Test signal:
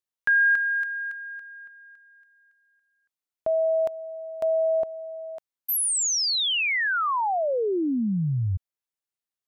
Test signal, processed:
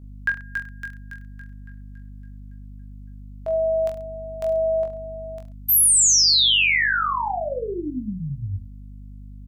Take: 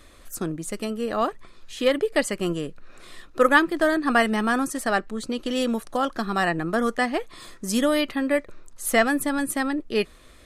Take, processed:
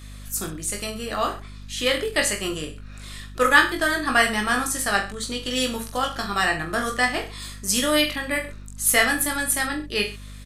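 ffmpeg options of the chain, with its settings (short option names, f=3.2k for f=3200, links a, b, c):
-af "tiltshelf=f=1.3k:g=-7,aeval=exprs='val(0)+0.00708*(sin(2*PI*50*n/s)+sin(2*PI*2*50*n/s)/2+sin(2*PI*3*50*n/s)/3+sin(2*PI*4*50*n/s)/4+sin(2*PI*5*50*n/s)/5)':c=same,aecho=1:1:20|43|69.45|99.87|134.8:0.631|0.398|0.251|0.158|0.1"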